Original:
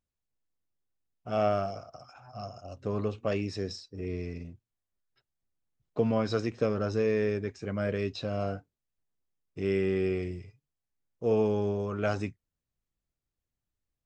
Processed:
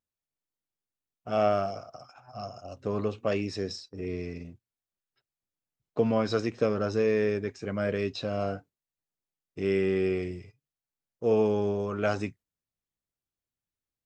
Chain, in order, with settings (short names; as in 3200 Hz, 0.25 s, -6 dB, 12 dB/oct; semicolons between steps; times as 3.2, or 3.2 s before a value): low shelf 77 Hz -11.5 dB; gate -52 dBFS, range -6 dB; gain +2.5 dB